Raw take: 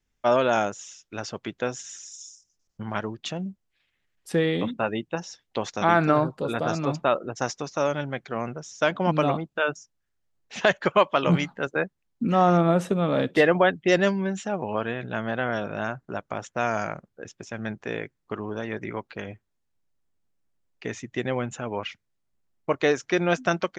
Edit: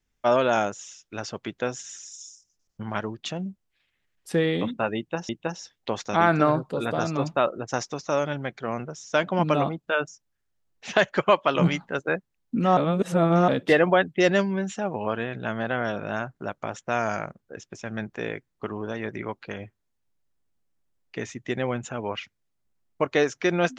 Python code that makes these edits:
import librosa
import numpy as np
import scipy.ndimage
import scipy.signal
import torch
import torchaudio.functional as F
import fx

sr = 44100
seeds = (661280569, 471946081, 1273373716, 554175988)

y = fx.edit(x, sr, fx.repeat(start_s=4.97, length_s=0.32, count=2),
    fx.reverse_span(start_s=12.45, length_s=0.71), tone=tone)